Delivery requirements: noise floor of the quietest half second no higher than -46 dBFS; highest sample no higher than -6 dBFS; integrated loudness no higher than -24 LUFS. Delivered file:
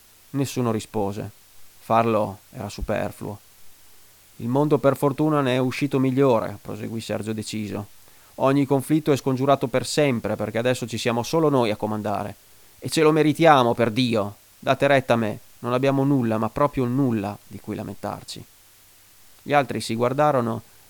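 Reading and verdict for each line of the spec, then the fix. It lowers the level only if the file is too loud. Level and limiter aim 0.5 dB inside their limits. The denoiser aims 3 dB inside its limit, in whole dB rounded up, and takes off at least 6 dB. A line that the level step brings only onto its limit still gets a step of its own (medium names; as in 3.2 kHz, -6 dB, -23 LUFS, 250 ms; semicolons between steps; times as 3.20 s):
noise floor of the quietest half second -53 dBFS: pass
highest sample -1.5 dBFS: fail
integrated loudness -22.5 LUFS: fail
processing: trim -2 dB; peak limiter -6.5 dBFS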